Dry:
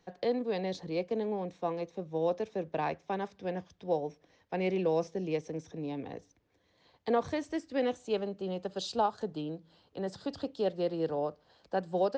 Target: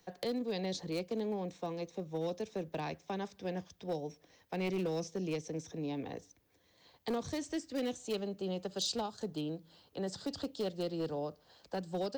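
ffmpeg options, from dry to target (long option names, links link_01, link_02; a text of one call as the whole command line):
ffmpeg -i in.wav -filter_complex "[0:a]acrossover=split=330|3000[link_01][link_02][link_03];[link_02]acompressor=threshold=-39dB:ratio=4[link_04];[link_01][link_04][link_03]amix=inputs=3:normalize=0,volume=29dB,asoftclip=hard,volume=-29dB,aemphasis=mode=production:type=50fm" out.wav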